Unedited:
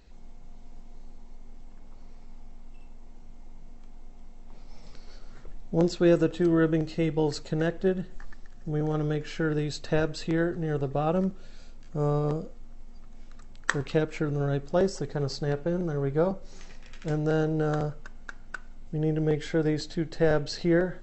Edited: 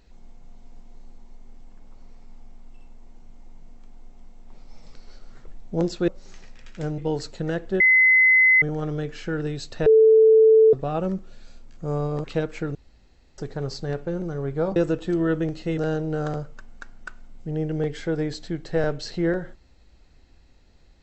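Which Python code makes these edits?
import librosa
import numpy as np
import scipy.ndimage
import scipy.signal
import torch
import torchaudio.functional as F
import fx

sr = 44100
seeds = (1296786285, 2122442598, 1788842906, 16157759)

y = fx.edit(x, sr, fx.swap(start_s=6.08, length_s=1.02, other_s=16.35, other_length_s=0.9),
    fx.bleep(start_s=7.92, length_s=0.82, hz=2040.0, db=-12.5),
    fx.bleep(start_s=9.98, length_s=0.87, hz=441.0, db=-10.5),
    fx.cut(start_s=12.36, length_s=1.47),
    fx.room_tone_fill(start_s=14.34, length_s=0.63), tone=tone)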